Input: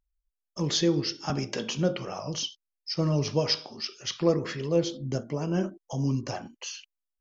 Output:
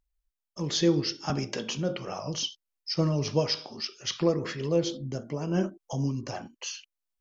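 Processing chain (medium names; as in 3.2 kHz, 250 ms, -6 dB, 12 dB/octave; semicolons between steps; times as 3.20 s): random flutter of the level, depth 60%; trim +2.5 dB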